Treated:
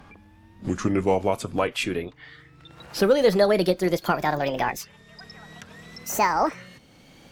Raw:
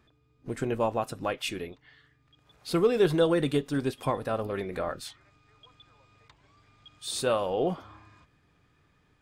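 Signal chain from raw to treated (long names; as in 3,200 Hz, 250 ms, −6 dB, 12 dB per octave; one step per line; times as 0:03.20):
gliding playback speed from 66% → 186%
multiband upward and downward compressor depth 40%
level +6 dB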